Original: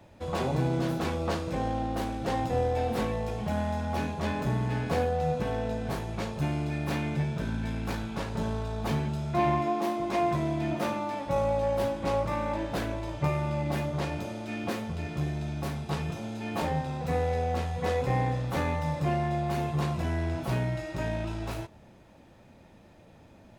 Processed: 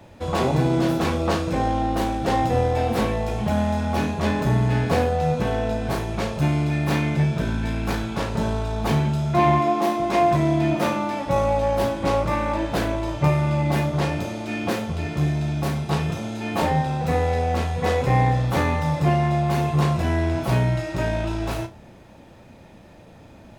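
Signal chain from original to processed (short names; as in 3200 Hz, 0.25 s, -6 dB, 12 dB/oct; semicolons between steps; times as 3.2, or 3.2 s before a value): flutter echo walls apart 5.7 m, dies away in 0.2 s; gain +7.5 dB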